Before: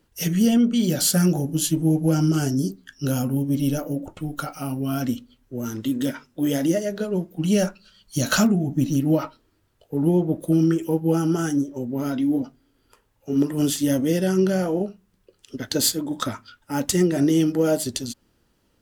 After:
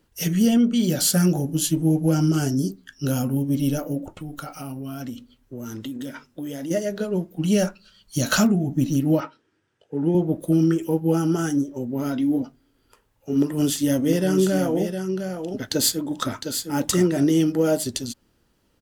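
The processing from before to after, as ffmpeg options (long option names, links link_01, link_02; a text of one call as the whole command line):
ffmpeg -i in.wav -filter_complex "[0:a]asplit=3[link_01][link_02][link_03];[link_01]afade=type=out:start_time=4.2:duration=0.02[link_04];[link_02]acompressor=threshold=-30dB:ratio=4:attack=3.2:release=140:knee=1:detection=peak,afade=type=in:start_time=4.2:duration=0.02,afade=type=out:start_time=6.7:duration=0.02[link_05];[link_03]afade=type=in:start_time=6.7:duration=0.02[link_06];[link_04][link_05][link_06]amix=inputs=3:normalize=0,asettb=1/sr,asplit=3[link_07][link_08][link_09];[link_07]atrim=end=9.204[link_10];[link_08]atrim=start=9.2:end=10.15,asetpts=PTS-STARTPTS,afade=type=in:duration=0.004:curve=qsin,afade=type=out:start_time=0.946:duration=0.004:curve=qsin,highpass=160,equalizer=frequency=240:width_type=q:width=4:gain=-4,equalizer=frequency=650:width_type=q:width=4:gain=-6,equalizer=frequency=1100:width_type=q:width=4:gain=-5,equalizer=frequency=1600:width_type=q:width=4:gain=5,equalizer=frequency=4300:width_type=q:width=4:gain=-8,equalizer=frequency=7100:width_type=q:width=4:gain=-5,lowpass=frequency=7800:width=0.5412,lowpass=frequency=7800:width=1.3066[link_11];[link_09]atrim=start=10.146[link_12];[link_10][link_11]acrossfade=duration=0.004:curve1=hsin:curve2=qsin[link_13];[link_13][link_12]acrossfade=duration=0.004:curve1=qsin:curve2=hsin,asplit=3[link_14][link_15][link_16];[link_14]afade=type=out:start_time=14.05:duration=0.02[link_17];[link_15]aecho=1:1:708:0.447,afade=type=in:start_time=14.05:duration=0.02,afade=type=out:start_time=17.23:duration=0.02[link_18];[link_16]afade=type=in:start_time=17.23:duration=0.02[link_19];[link_17][link_18][link_19]amix=inputs=3:normalize=0" out.wav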